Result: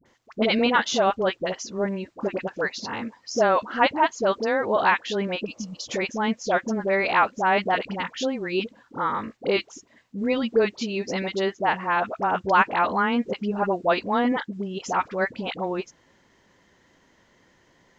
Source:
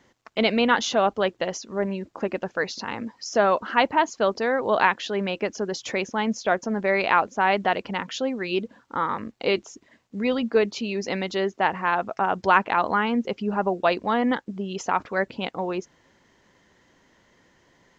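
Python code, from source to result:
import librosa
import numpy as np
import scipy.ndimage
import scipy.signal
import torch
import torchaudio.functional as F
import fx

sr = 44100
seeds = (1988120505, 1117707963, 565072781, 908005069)

y = fx.dispersion(x, sr, late='highs', ms=57.0, hz=780.0)
y = fx.spec_repair(y, sr, seeds[0], start_s=5.47, length_s=0.35, low_hz=340.0, high_hz=2400.0, source='after')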